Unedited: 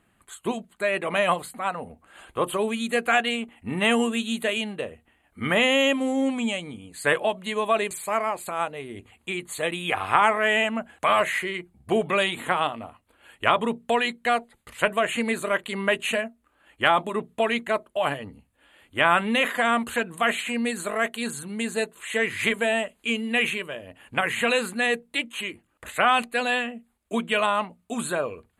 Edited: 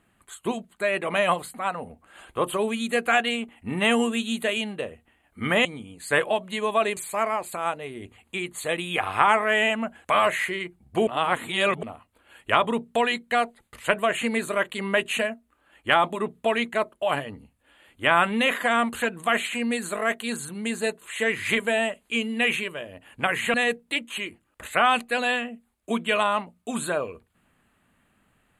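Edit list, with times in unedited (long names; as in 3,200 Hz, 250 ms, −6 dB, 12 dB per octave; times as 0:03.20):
0:05.65–0:06.59: remove
0:12.01–0:12.77: reverse
0:24.48–0:24.77: remove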